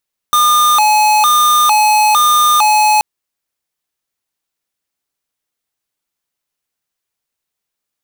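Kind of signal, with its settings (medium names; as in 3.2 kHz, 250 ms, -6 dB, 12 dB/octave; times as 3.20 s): siren hi-lo 850–1210 Hz 1.1 per s square -10 dBFS 2.68 s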